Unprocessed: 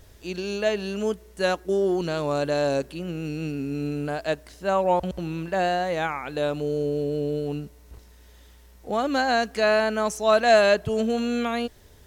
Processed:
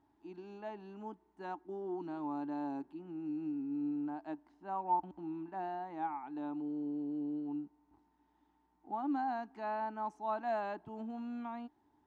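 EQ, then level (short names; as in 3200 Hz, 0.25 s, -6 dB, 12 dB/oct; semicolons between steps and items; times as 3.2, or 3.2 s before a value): double band-pass 510 Hz, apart 1.5 oct; -4.0 dB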